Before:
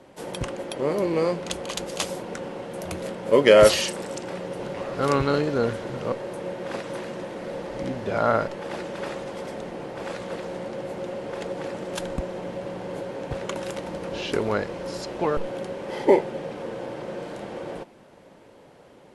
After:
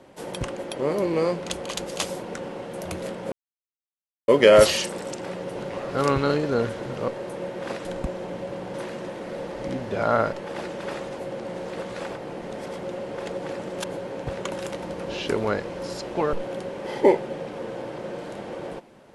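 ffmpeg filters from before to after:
-filter_complex "[0:a]asplit=7[a][b][c][d][e][f][g];[a]atrim=end=3.32,asetpts=PTS-STARTPTS,afade=t=out:st=3.316:d=0.004:c=hsin,apad=pad_dur=0.96[h];[b]atrim=start=3.32:end=6.892,asetpts=PTS-STARTPTS,afade=t=in:d=0.004:c=hsin[i];[c]atrim=start=11.988:end=12.882[j];[d]atrim=start=6.888:end=9.342[k];[e]atrim=start=9.338:end=10.942,asetpts=PTS-STARTPTS,areverse[l];[f]atrim=start=10.938:end=11.992[m];[g]atrim=start=12.878[n];[h][i]concat=n=2:v=0:a=1[o];[o][j]acrossfade=d=0.004:c1=hsin:c2=hsin[p];[p][k]acrossfade=d=0.004:c1=hsin:c2=hsin[q];[q][l]acrossfade=d=0.004:c1=hsin:c2=hsin[r];[r][m]acrossfade=d=0.004:c1=hsin:c2=hsin[s];[s][n]acrossfade=d=0.004:c1=hsin:c2=hsin"

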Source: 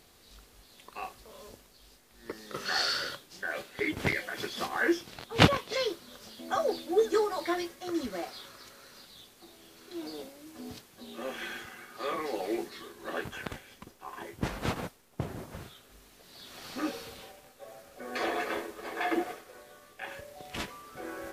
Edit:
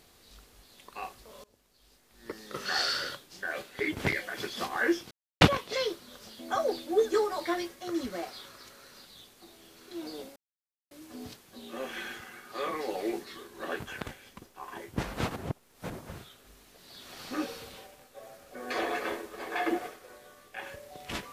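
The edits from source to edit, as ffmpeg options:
-filter_complex "[0:a]asplit=7[a][b][c][d][e][f][g];[a]atrim=end=1.44,asetpts=PTS-STARTPTS,afade=t=out:st=1.436:d=0.004:c=hsin:silence=0.0749894[h];[b]atrim=start=1.44:end=5.11,asetpts=PTS-STARTPTS,afade=t=in:d=0.84:silence=0.0749894,afade=t=out:st=3.666:d=0.004:c=hsin[i];[c]atrim=start=5.11:end=5.41,asetpts=PTS-STARTPTS,volume=0[j];[d]atrim=start=5.41:end=10.36,asetpts=PTS-STARTPTS,afade=t=in:d=0.004:c=hsin,afade=t=out:st=4.946:d=0.004:c=hsin,apad=pad_dur=0.55[k];[e]atrim=start=10.36:end=14.812,asetpts=PTS-STARTPTS,afade=t=in:d=0.004:c=hsin[l];[f]atrim=start=14.808:end=15.352,asetpts=PTS-STARTPTS,areverse[m];[g]atrim=start=15.348[n];[h][i][j][k][l]concat=n=5:v=0:a=1[o];[o][m]acrossfade=d=0.004:c1=hsin:c2=hsin[p];[p][n]acrossfade=d=0.004:c1=hsin:c2=hsin"

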